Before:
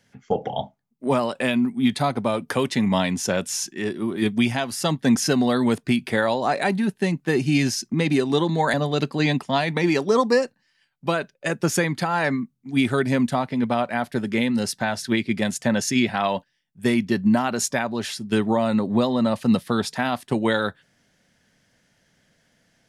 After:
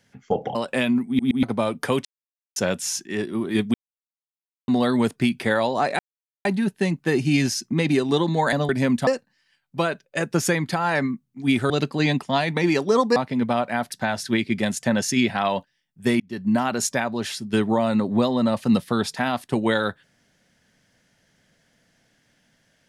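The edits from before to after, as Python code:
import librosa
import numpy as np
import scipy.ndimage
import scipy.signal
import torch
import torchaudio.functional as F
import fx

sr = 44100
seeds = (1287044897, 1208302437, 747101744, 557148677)

y = fx.edit(x, sr, fx.cut(start_s=0.55, length_s=0.67),
    fx.stutter_over(start_s=1.74, slice_s=0.12, count=3),
    fx.silence(start_s=2.72, length_s=0.51),
    fx.silence(start_s=4.41, length_s=0.94),
    fx.insert_silence(at_s=6.66, length_s=0.46),
    fx.swap(start_s=8.9, length_s=1.46, other_s=12.99, other_length_s=0.38),
    fx.cut(start_s=14.13, length_s=0.58),
    fx.fade_in_span(start_s=16.99, length_s=0.43), tone=tone)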